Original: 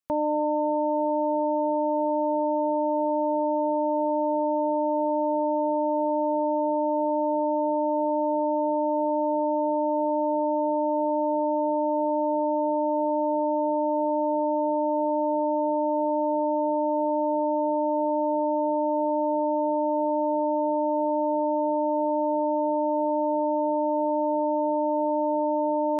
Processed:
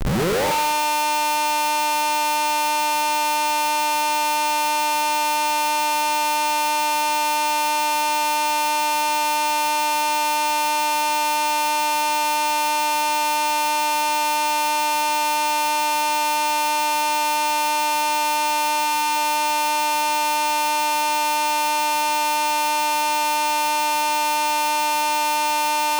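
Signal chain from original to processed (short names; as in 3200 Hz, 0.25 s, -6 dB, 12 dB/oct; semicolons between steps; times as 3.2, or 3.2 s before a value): tape start at the beginning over 0.45 s; bell 590 Hz +10.5 dB 0.71 oct; thinning echo 74 ms, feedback 47%, high-pass 200 Hz, level -5 dB; AGC gain up to 7.5 dB; fixed phaser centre 420 Hz, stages 8; Schmitt trigger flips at -37.5 dBFS; spectral gain 18.85–19.16, 340–780 Hz -12 dB; on a send at -16 dB: reverb RT60 1.1 s, pre-delay 29 ms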